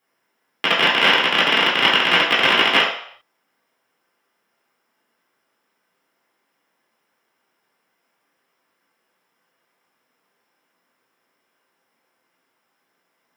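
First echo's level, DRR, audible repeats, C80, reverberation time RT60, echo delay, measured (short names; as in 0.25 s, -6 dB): none, -7.5 dB, none, 8.0 dB, 0.60 s, none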